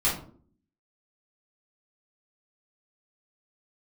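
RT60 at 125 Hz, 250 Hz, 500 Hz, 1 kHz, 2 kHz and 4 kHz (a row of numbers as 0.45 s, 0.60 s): 0.70 s, 0.75 s, 0.60 s, 0.45 s, 0.30 s, 0.25 s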